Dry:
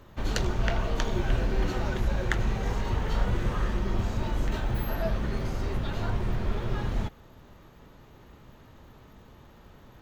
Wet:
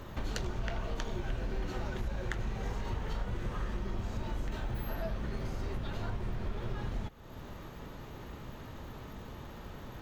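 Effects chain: compressor 3:1, threshold -44 dBFS, peak gain reduction 18 dB; gain +6.5 dB

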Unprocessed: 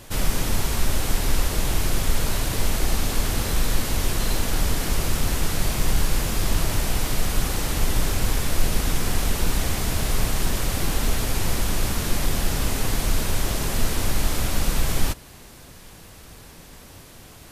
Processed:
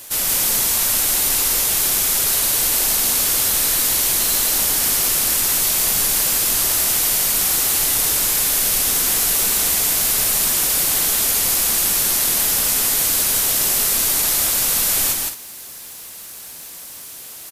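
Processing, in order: requantised 12-bit, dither triangular; RIAA curve recording; loudspeakers at several distances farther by 56 m -3 dB, 74 m -11 dB

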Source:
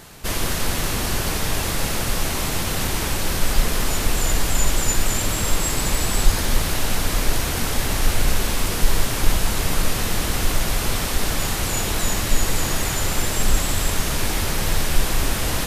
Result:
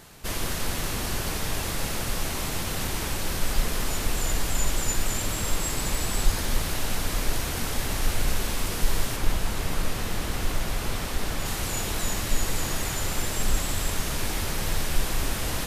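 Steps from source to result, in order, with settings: 9.16–11.46 bell 13000 Hz -4.5 dB 2.4 oct; gain -6 dB

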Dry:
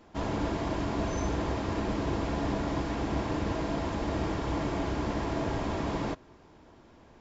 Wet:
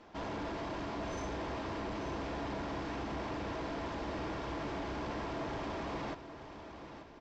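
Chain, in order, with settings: low shelf 290 Hz -8.5 dB; notch 6900 Hz, Q 11; in parallel at -1 dB: compressor, threshold -46 dBFS, peak gain reduction 15 dB; on the sum: soft clip -31 dBFS, distortion -13 dB; air absorption 55 m; on a send: feedback echo 0.885 s, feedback 36%, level -11 dB; on the sum: gain -3 dB

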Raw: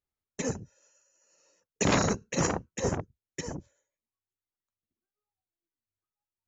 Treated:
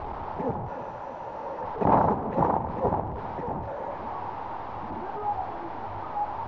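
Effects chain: delta modulation 32 kbps, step -29 dBFS; synth low-pass 880 Hz, resonance Q 5.1; split-band echo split 580 Hz, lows 0.318 s, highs 0.107 s, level -13 dB

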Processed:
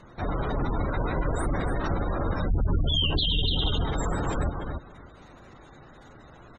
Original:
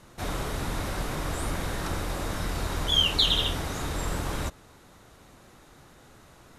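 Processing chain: 2.5–3.55 low shelf 250 Hz +8.5 dB; feedback echo 0.288 s, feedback 15%, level -5 dB; 0.64–1.08 echo throw 0.29 s, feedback 25%, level -10 dB; spectral gate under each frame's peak -20 dB strong; limiter -20 dBFS, peak gain reduction 13 dB; gain +3.5 dB

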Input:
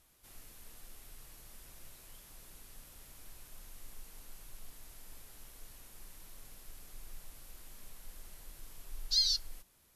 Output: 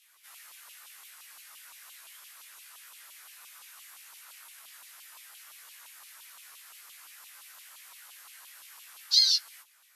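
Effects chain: chorus voices 4, 0.29 Hz, delay 17 ms, depth 3.7 ms; LFO high-pass saw down 5.8 Hz 970–3000 Hz; gain +8.5 dB

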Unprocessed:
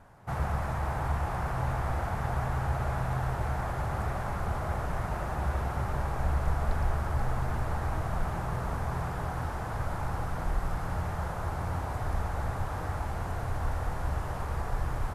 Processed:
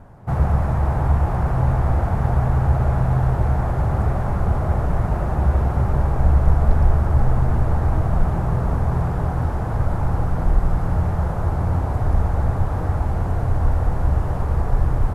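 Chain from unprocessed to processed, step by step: tilt shelf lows +7 dB, about 850 Hz; gain +6.5 dB

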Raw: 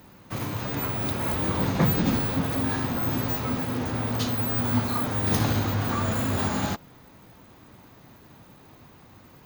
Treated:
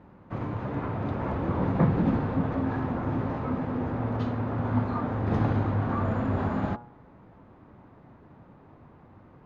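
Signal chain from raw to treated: LPF 1300 Hz 12 dB/oct; de-hum 119.5 Hz, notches 14

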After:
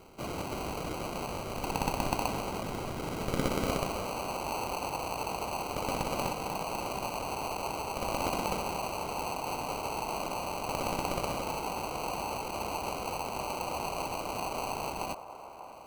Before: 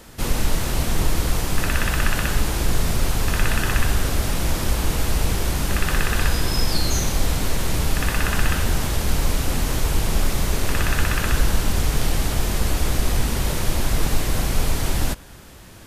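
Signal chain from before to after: band-pass sweep 5800 Hz -> 940 Hz, 0.7–4.15; sample-and-hold 25×; band-limited delay 0.593 s, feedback 56%, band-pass 840 Hz, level -11.5 dB; gain +2 dB

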